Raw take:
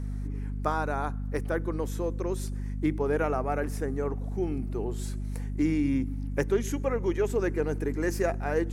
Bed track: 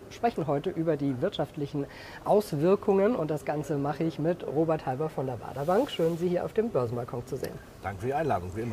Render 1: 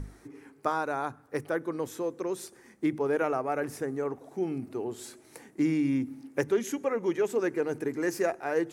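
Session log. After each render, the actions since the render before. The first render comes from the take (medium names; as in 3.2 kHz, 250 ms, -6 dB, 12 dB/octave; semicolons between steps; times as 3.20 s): hum notches 50/100/150/200/250 Hz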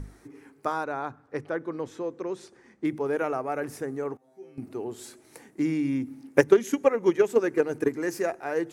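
0.84–2.85 s: distance through air 94 m; 4.17–4.58 s: feedback comb 130 Hz, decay 0.55 s, mix 100%; 6.28–7.91 s: transient shaper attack +11 dB, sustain 0 dB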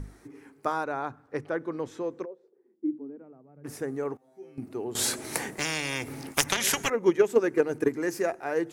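2.24–3.64 s: band-pass filter 580 Hz -> 150 Hz, Q 7.8; 4.95–6.90 s: spectrum-flattening compressor 10:1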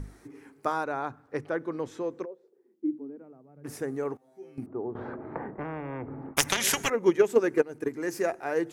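4.66–6.37 s: low-pass 1.3 kHz 24 dB/octave; 7.62–8.25 s: fade in, from -13.5 dB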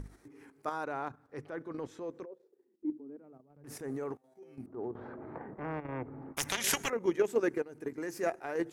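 level held to a coarse grid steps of 9 dB; transient shaper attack -7 dB, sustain -2 dB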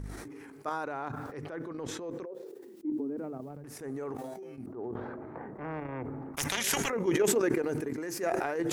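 decay stretcher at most 21 dB/s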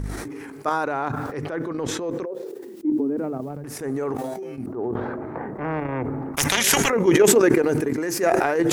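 trim +11 dB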